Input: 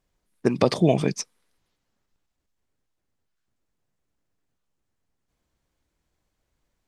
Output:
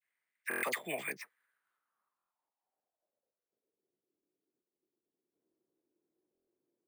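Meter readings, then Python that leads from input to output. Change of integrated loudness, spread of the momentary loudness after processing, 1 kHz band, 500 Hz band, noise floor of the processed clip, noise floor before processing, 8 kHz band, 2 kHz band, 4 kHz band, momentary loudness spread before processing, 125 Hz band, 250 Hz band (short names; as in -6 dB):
-15.0 dB, 11 LU, -12.5 dB, -19.5 dB, under -85 dBFS, -79 dBFS, -11.0 dB, +1.5 dB, -14.0 dB, 13 LU, -33.0 dB, -25.5 dB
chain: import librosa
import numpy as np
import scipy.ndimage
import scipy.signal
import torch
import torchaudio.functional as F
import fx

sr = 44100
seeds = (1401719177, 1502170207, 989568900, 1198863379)

y = scipy.signal.sosfilt(scipy.signal.butter(2, 140.0, 'highpass', fs=sr, output='sos'), x)
y = fx.dispersion(y, sr, late='lows', ms=50.0, hz=1400.0)
y = fx.filter_sweep_bandpass(y, sr, from_hz=2000.0, to_hz=360.0, start_s=1.13, end_s=3.97, q=5.0)
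y = np.repeat(scipy.signal.resample_poly(y, 1, 4), 4)[:len(y)]
y = fx.buffer_glitch(y, sr, at_s=(0.49, 2.17, 6.33), block=1024, repeats=5)
y = y * librosa.db_to_amplitude(5.5)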